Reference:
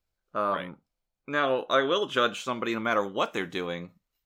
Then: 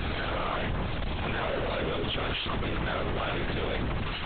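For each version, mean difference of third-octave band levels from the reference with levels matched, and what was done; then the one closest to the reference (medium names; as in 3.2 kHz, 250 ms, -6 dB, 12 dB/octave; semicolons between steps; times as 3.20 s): 10.5 dB: one-bit comparator; LPC vocoder at 8 kHz whisper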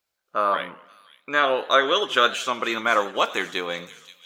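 5.0 dB: high-pass 730 Hz 6 dB/octave; feedback echo behind a high-pass 527 ms, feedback 56%, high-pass 4.5 kHz, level -9 dB; modulated delay 92 ms, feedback 55%, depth 189 cents, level -19.5 dB; trim +8 dB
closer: second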